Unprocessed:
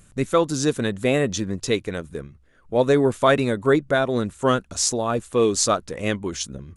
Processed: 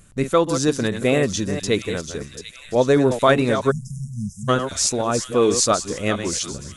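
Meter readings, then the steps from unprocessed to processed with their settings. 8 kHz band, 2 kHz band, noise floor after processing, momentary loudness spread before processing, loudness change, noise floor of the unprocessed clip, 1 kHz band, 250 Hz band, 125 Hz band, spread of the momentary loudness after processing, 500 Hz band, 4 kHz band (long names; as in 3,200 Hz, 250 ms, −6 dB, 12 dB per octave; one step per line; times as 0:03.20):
+3.0 dB, +0.5 dB, −43 dBFS, 8 LU, +1.5 dB, −55 dBFS, +1.5 dB, +1.5 dB, +2.0 dB, 12 LU, +1.0 dB, +2.5 dB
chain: delay that plays each chunk backwards 228 ms, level −9 dB
delay with a high-pass on its return 739 ms, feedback 59%, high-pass 2,900 Hz, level −8 dB
time-frequency box erased 0:03.71–0:04.49, 230–4,900 Hz
level +1.5 dB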